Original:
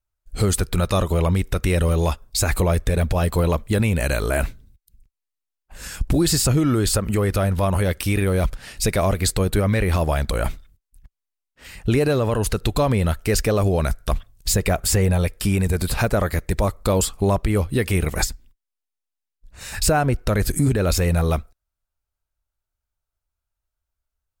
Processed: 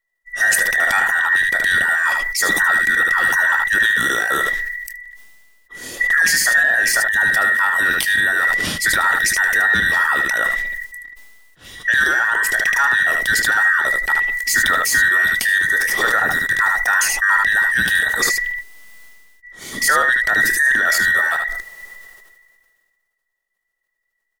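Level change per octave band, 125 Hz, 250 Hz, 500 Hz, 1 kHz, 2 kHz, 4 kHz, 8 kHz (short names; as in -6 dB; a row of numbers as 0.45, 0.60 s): -21.0, -13.0, -9.5, +6.5, +19.5, +5.5, +4.0 dB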